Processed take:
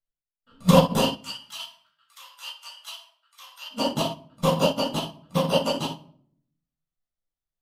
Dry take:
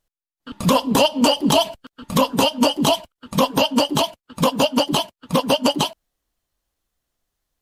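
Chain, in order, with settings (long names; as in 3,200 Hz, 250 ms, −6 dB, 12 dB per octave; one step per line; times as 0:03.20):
0:01.01–0:03.70: high-pass filter 1,300 Hz 24 dB per octave
rectangular room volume 980 cubic metres, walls furnished, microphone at 6.9 metres
expander for the loud parts 2.5 to 1, over −17 dBFS
level −7 dB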